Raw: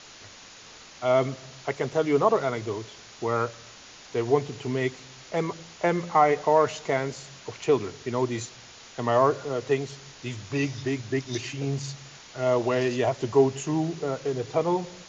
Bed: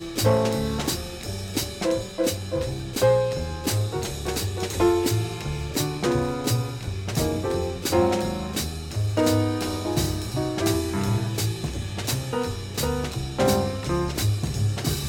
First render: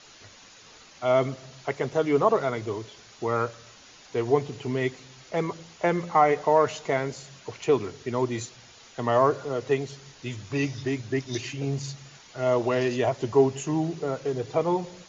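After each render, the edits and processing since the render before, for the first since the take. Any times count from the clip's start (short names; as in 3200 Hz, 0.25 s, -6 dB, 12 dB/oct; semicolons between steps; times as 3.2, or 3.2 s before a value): denoiser 6 dB, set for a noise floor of -48 dBFS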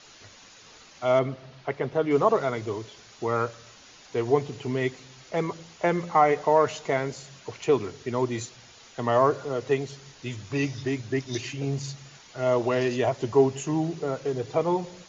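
1.19–2.11 air absorption 180 m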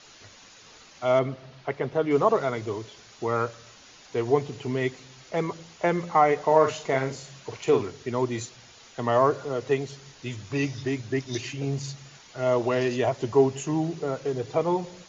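6.44–7.83 doubler 45 ms -7 dB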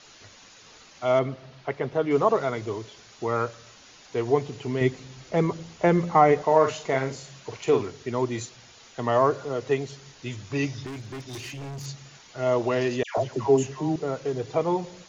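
4.81–6.43 low shelf 400 Hz +8.5 dB; 10.86–11.86 overloaded stage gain 34 dB; 13.03–13.96 dispersion lows, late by 0.145 s, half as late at 1200 Hz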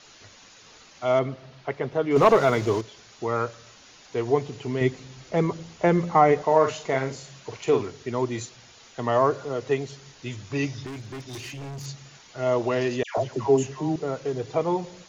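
2.16–2.81 sample leveller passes 2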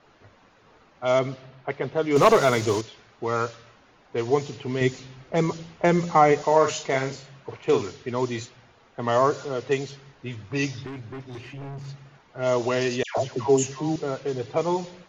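low-pass opened by the level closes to 1100 Hz, open at -18.5 dBFS; high shelf 3900 Hz +11.5 dB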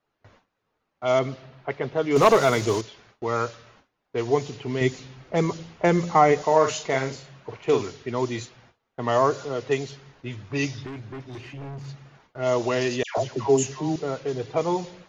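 gate with hold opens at -42 dBFS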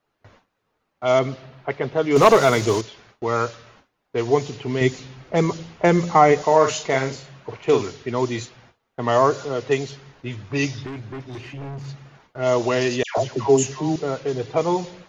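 gain +3.5 dB; limiter -3 dBFS, peak gain reduction 1 dB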